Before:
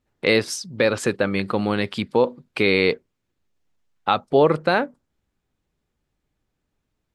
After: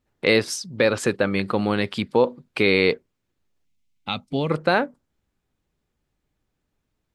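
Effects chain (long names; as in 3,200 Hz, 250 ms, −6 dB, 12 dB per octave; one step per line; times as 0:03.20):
gain on a spectral selection 0:03.65–0:04.51, 280–2,000 Hz −12 dB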